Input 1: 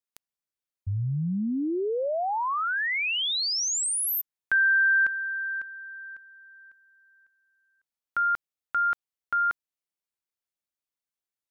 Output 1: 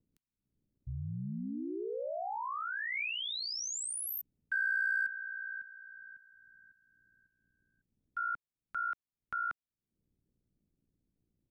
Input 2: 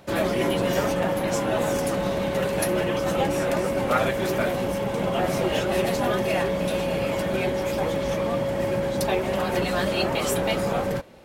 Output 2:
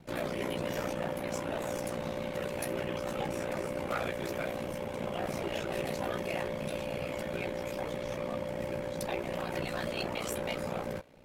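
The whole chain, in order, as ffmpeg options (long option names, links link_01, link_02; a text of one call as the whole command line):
ffmpeg -i in.wav -filter_complex "[0:a]equalizer=frequency=2300:width_type=o:width=0.36:gain=3,acrossover=split=280|5100[link_01][link_02][link_03];[link_01]acompressor=mode=upward:threshold=-35dB:ratio=2.5:attack=1.6:release=269:knee=2.83:detection=peak[link_04];[link_04][link_02][link_03]amix=inputs=3:normalize=0,aeval=exprs='val(0)*sin(2*PI*30*n/s)':channel_layout=same,volume=18dB,asoftclip=hard,volume=-18dB,volume=-8dB" out.wav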